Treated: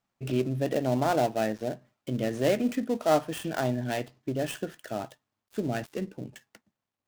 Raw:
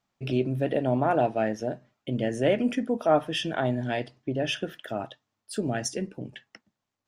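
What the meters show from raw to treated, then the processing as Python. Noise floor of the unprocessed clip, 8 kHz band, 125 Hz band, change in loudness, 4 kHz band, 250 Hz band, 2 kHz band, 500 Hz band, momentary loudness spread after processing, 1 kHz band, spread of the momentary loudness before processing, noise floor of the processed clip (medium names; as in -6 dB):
-84 dBFS, -2.5 dB, -1.5 dB, -2.0 dB, -5.5 dB, -1.5 dB, -2.5 dB, -1.5 dB, 11 LU, -1.5 dB, 12 LU, under -85 dBFS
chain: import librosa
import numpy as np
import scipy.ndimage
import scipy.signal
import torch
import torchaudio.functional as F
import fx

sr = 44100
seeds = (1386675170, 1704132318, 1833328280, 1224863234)

y = fx.dead_time(x, sr, dead_ms=0.11)
y = F.gain(torch.from_numpy(y), -1.5).numpy()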